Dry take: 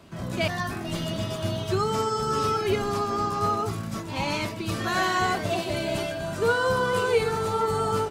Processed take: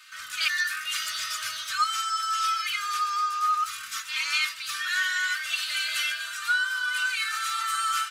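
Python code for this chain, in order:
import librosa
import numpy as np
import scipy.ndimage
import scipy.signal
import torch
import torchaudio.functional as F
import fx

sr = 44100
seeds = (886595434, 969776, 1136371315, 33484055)

y = scipy.signal.sosfilt(scipy.signal.ellip(4, 1.0, 40, 1300.0, 'highpass', fs=sr, output='sos'), x)
y = y + 0.86 * np.pad(y, (int(3.3 * sr / 1000.0), 0))[:len(y)]
y = fx.rider(y, sr, range_db=5, speed_s=0.5)
y = F.gain(torch.from_numpy(y), 3.0).numpy()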